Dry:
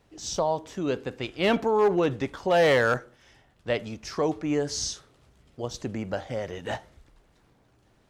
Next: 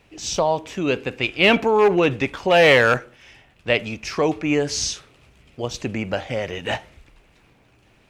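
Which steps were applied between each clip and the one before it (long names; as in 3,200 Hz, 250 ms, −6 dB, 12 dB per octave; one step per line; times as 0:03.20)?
parametric band 2,500 Hz +11.5 dB 0.55 octaves
level +5.5 dB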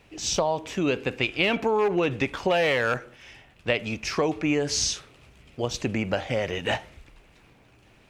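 downward compressor 6 to 1, threshold −20 dBFS, peak gain reduction 10.5 dB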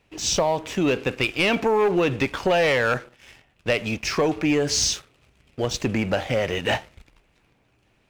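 leveller curve on the samples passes 2
level −3.5 dB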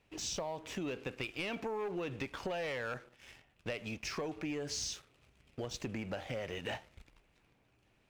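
downward compressor 3 to 1, threshold −32 dBFS, peak gain reduction 11 dB
level −7.5 dB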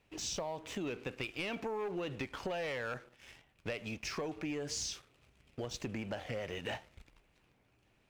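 wow of a warped record 45 rpm, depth 100 cents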